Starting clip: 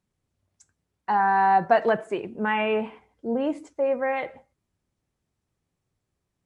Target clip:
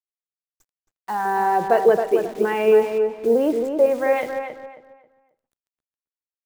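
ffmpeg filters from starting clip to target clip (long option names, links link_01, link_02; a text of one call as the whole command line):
ffmpeg -i in.wav -filter_complex "[0:a]asettb=1/sr,asplit=3[link_01][link_02][link_03];[link_01]atrim=end=1.254[link_04];[link_02]atrim=start=1.25:end=3.86,asetpts=PTS-STARTPTS,afade=type=in:duration=0.004:curve=qsin,afade=type=out:start_time=2.606:duration=0.004:curve=qsin,equalizer=frequency=430:width=2.2:gain=14[link_05];[link_03]atrim=start=3.856[link_06];[link_04][link_05]acrossfade=duration=0.004:curve1=hsin:curve2=qsin[link_07];[link_07][link_06]acrossfade=duration=0.004:curve1=qsin:curve2=hsin,dynaudnorm=framelen=280:gausssize=7:maxgain=10.5dB,acrusher=bits=7:dc=4:mix=0:aa=0.000001,asplit=2[link_08][link_09];[link_09]adelay=270,lowpass=frequency=2600:poles=1,volume=-6dB,asplit=2[link_10][link_11];[link_11]adelay=270,lowpass=frequency=2600:poles=1,volume=0.3,asplit=2[link_12][link_13];[link_13]adelay=270,lowpass=frequency=2600:poles=1,volume=0.3,asplit=2[link_14][link_15];[link_15]adelay=270,lowpass=frequency=2600:poles=1,volume=0.3[link_16];[link_08][link_10][link_12][link_14][link_16]amix=inputs=5:normalize=0,volume=-4dB" out.wav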